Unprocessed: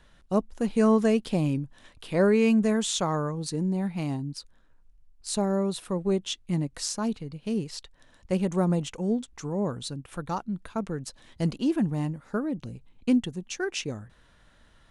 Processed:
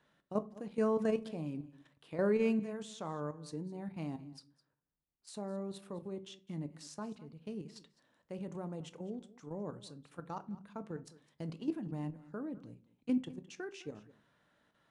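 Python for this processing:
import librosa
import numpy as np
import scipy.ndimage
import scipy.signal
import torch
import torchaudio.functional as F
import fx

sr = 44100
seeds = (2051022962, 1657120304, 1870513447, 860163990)

y = scipy.signal.sosfilt(scipy.signal.butter(2, 170.0, 'highpass', fs=sr, output='sos'), x)
y = fx.high_shelf(y, sr, hz=3000.0, db=-8.0)
y = fx.level_steps(y, sr, step_db=11)
y = y + 10.0 ** (-19.5 / 20.0) * np.pad(y, (int(208 * sr / 1000.0), 0))[:len(y)]
y = fx.room_shoebox(y, sr, seeds[0], volume_m3=220.0, walls='furnished', distance_m=0.42)
y = y * 10.0 ** (-7.5 / 20.0)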